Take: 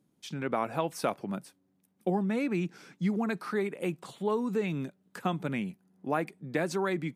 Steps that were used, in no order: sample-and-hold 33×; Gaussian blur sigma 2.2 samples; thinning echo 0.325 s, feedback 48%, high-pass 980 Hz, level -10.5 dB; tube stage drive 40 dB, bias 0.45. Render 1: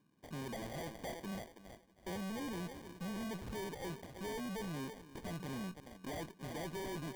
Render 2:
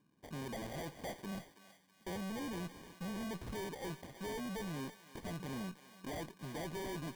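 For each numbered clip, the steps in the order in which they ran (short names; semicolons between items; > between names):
thinning echo > tube stage > Gaussian blur > sample-and-hold; Gaussian blur > tube stage > sample-and-hold > thinning echo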